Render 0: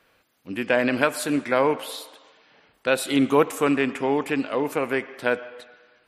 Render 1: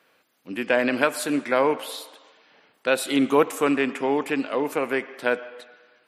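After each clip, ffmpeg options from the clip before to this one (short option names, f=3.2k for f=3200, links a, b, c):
-af "highpass=180"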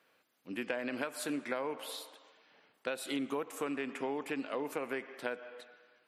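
-af "acompressor=threshold=-24dB:ratio=10,volume=-8dB"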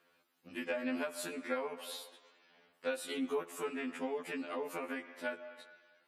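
-af "afftfilt=real='re*2*eq(mod(b,4),0)':imag='im*2*eq(mod(b,4),0)':win_size=2048:overlap=0.75,volume=1dB"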